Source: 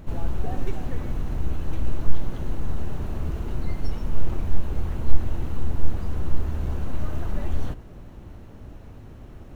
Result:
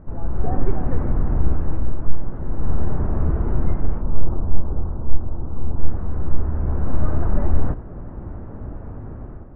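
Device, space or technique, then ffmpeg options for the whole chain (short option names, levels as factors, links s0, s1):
action camera in a waterproof case: -filter_complex "[0:a]asettb=1/sr,asplit=3[s0][s1][s2];[s0]atrim=end=4.014[s3];[s1]atrim=start=4.01:end=5.79,asetpts=PTS-STARTPTS,afade=t=in:d=0.004:c=qsin,afade=t=out:st=1.776:d=0.004:c=qsin,lowpass=f=1300:w=0.5412,lowpass=f=1300:w=1.3066[s4];[s2]atrim=start=5.786[s5];[s3][s4]acrossfade=d=0.004:c1=hsin:c2=qsin[s6];[s6][s5]acrossfade=d=0.004:c1=qsin:c2=hsin,lowpass=f=1500:w=0.5412,lowpass=f=1500:w=1.3066,dynaudnorm=f=150:g=5:m=3.35,volume=0.891" -ar 22050 -c:a aac -b:a 48k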